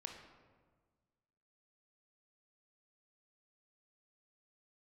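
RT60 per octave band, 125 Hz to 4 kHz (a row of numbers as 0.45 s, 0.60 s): 1.9 s, 1.8 s, 1.6 s, 1.4 s, 1.1 s, 0.85 s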